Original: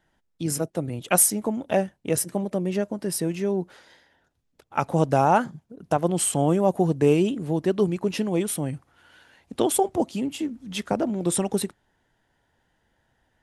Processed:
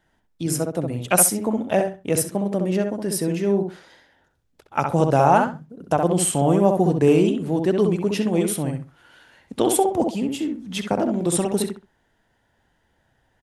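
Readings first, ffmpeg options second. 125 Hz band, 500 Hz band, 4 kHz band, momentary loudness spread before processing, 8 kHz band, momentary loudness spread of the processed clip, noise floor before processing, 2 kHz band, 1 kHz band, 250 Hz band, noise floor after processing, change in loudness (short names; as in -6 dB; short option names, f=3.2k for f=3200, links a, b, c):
+3.5 dB, +3.5 dB, +2.5 dB, 11 LU, +2.0 dB, 11 LU, -72 dBFS, +3.0 dB, +3.5 dB, +3.5 dB, -67 dBFS, +3.0 dB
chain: -filter_complex "[0:a]asplit=2[a][b];[b]adelay=65,lowpass=f=2.3k:p=1,volume=-4dB,asplit=2[c][d];[d]adelay=65,lowpass=f=2.3k:p=1,volume=0.23,asplit=2[e][f];[f]adelay=65,lowpass=f=2.3k:p=1,volume=0.23[g];[a][c][e][g]amix=inputs=4:normalize=0,volume=2dB"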